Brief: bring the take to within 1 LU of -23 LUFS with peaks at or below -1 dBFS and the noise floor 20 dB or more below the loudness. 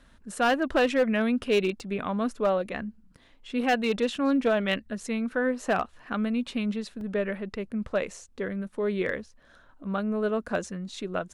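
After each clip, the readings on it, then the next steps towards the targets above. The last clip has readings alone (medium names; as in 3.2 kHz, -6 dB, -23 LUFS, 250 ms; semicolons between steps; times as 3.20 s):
clipped samples 0.4%; clipping level -17.0 dBFS; dropouts 2; longest dropout 1.8 ms; loudness -28.5 LUFS; peak level -17.0 dBFS; loudness target -23.0 LUFS
-> clip repair -17 dBFS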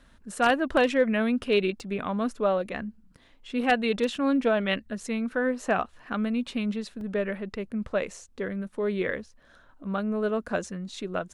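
clipped samples 0.0%; dropouts 2; longest dropout 1.8 ms
-> interpolate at 1.80/7.01 s, 1.8 ms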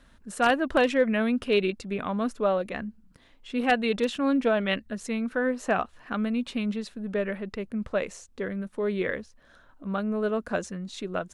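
dropouts 0; loudness -28.0 LUFS; peak level -8.5 dBFS; loudness target -23.0 LUFS
-> trim +5 dB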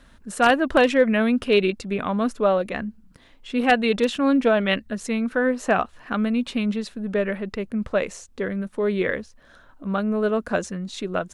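loudness -23.0 LUFS; peak level -3.5 dBFS; noise floor -53 dBFS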